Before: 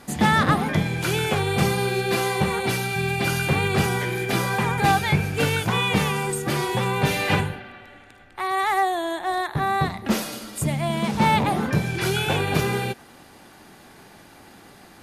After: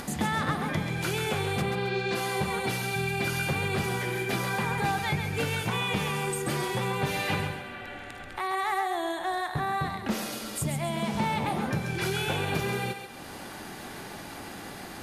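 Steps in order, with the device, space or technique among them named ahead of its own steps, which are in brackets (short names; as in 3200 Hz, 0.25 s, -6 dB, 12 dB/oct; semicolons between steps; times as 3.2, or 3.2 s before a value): upward and downward compression (upward compressor, threshold -27 dBFS; compressor 3:1, threshold -23 dBFS, peak gain reduction 7.5 dB); 1.61–2.14 LPF 2900 Hz -> 7600 Hz 24 dB/oct; thinning echo 0.135 s, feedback 41%, high-pass 420 Hz, level -7 dB; gain -3.5 dB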